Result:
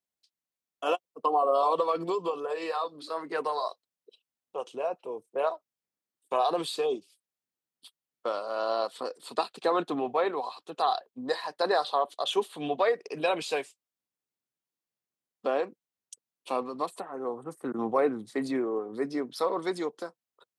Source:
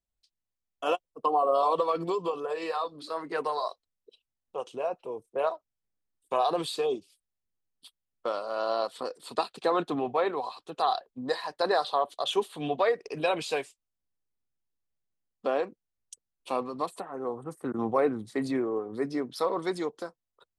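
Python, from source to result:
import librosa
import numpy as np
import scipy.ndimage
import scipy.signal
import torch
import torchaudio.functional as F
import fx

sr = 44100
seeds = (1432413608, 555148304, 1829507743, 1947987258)

y = scipy.signal.sosfilt(scipy.signal.butter(2, 180.0, 'highpass', fs=sr, output='sos'), x)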